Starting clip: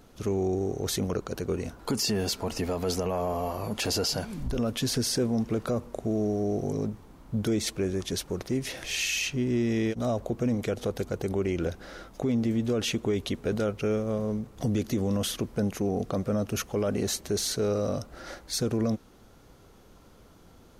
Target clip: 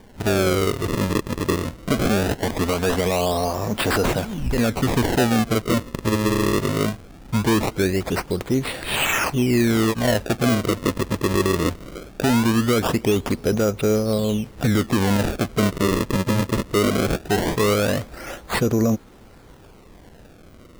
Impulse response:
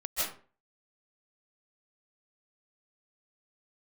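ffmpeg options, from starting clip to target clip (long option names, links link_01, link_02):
-af "acrusher=samples=33:mix=1:aa=0.000001:lfo=1:lforange=52.8:lforate=0.2,volume=8dB"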